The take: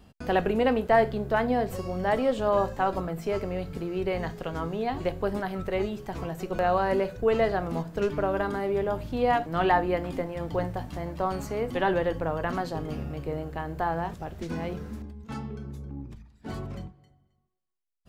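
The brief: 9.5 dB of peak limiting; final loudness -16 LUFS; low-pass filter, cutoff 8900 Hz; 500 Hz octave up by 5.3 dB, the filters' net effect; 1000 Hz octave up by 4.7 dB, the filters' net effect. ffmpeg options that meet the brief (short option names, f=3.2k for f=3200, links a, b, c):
-af "lowpass=8.9k,equalizer=f=500:t=o:g=5.5,equalizer=f=1k:t=o:g=4,volume=11dB,alimiter=limit=-4.5dB:level=0:latency=1"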